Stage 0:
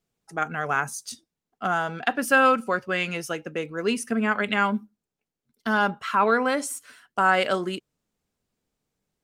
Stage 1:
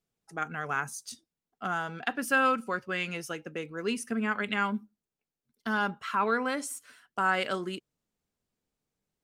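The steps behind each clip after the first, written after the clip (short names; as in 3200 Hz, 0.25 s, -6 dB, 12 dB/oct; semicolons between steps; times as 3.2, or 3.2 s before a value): dynamic EQ 640 Hz, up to -5 dB, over -37 dBFS, Q 2; gain -5.5 dB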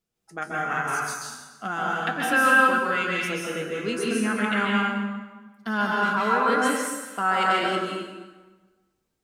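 resonator 69 Hz, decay 0.18 s, harmonics odd, mix 70%; plate-style reverb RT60 1.3 s, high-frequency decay 0.8×, pre-delay 0.12 s, DRR -4 dB; gain +7.5 dB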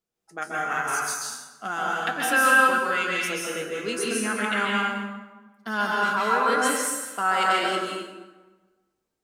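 tone controls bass -8 dB, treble +6 dB; mismatched tape noise reduction decoder only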